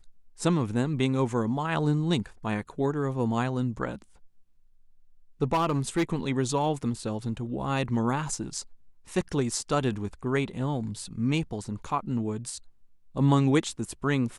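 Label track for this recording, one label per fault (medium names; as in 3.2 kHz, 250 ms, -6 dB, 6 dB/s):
5.530000	6.030000	clipped -20.5 dBFS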